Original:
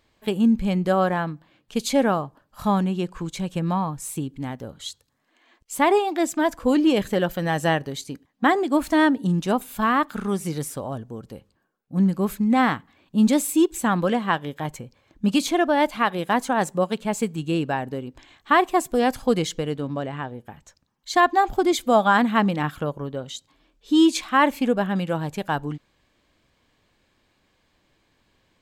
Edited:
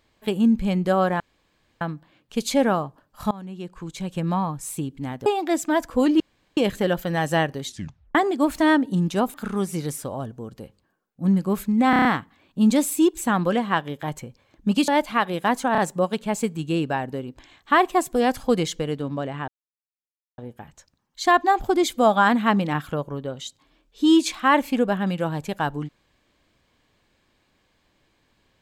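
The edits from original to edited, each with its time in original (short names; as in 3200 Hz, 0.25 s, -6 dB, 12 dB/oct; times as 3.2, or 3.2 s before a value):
1.2 insert room tone 0.61 s
2.7–3.66 fade in, from -22.5 dB
4.65–5.95 cut
6.89 insert room tone 0.37 s
7.98 tape stop 0.49 s
9.66–10.06 cut
12.62 stutter 0.03 s, 6 plays
15.45–15.73 cut
16.57 stutter 0.03 s, 3 plays
20.27 insert silence 0.90 s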